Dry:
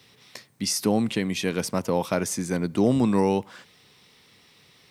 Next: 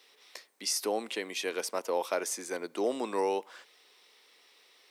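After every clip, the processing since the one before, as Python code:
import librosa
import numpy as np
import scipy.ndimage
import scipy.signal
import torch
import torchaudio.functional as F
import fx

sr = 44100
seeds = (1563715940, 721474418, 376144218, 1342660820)

y = scipy.signal.sosfilt(scipy.signal.butter(4, 370.0, 'highpass', fs=sr, output='sos'), x)
y = F.gain(torch.from_numpy(y), -4.5).numpy()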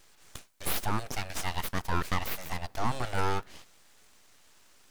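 y = np.abs(x)
y = F.gain(torch.from_numpy(y), 3.5).numpy()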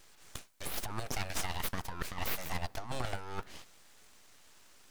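y = fx.over_compress(x, sr, threshold_db=-30.0, ratio=-0.5)
y = F.gain(torch.from_numpy(y), -3.0).numpy()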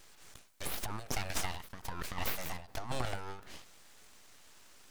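y = fx.end_taper(x, sr, db_per_s=110.0)
y = F.gain(torch.from_numpy(y), 1.5).numpy()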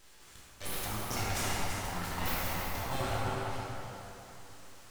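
y = x + 10.0 ** (-8.0 / 20.0) * np.pad(x, (int(336 * sr / 1000.0), 0))[:len(x)]
y = fx.rev_plate(y, sr, seeds[0], rt60_s=3.3, hf_ratio=0.55, predelay_ms=0, drr_db=-6.5)
y = F.gain(torch.from_numpy(y), -3.0).numpy()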